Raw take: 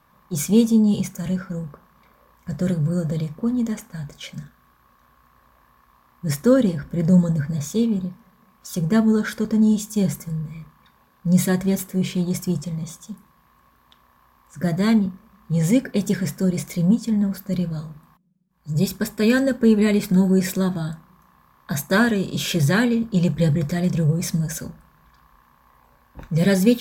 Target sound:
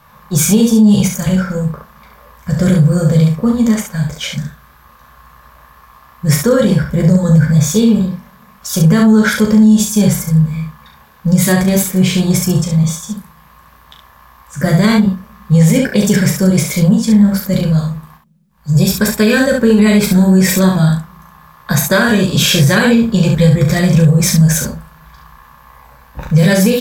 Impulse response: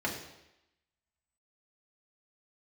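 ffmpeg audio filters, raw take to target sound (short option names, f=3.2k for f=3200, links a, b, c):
-filter_complex "[0:a]equalizer=f=310:w=1.8:g=-9,acompressor=threshold=-18dB:ratio=6,asplit=2[a][b];[b]aecho=0:1:14|38|69:0.473|0.501|0.562[c];[a][c]amix=inputs=2:normalize=0,alimiter=level_in=13.5dB:limit=-1dB:release=50:level=0:latency=1,volume=-1dB"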